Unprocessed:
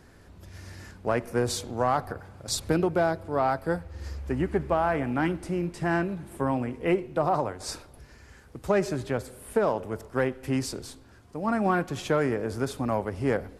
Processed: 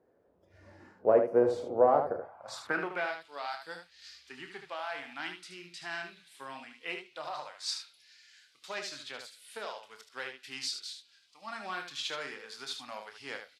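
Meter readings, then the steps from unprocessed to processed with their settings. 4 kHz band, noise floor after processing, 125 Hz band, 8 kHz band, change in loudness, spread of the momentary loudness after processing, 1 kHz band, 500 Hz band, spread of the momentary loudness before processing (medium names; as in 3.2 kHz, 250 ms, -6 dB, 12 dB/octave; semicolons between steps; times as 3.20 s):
+0.5 dB, -66 dBFS, -22.0 dB, -8.0 dB, -5.5 dB, 20 LU, -7.0 dB, -4.5 dB, 14 LU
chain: band-pass sweep 520 Hz -> 3.9 kHz, 2.10–3.31 s; spectral noise reduction 13 dB; early reflections 28 ms -9 dB, 75 ms -7 dB; trim +6 dB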